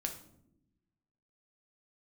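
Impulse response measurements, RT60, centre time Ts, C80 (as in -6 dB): no single decay rate, 15 ms, 13.5 dB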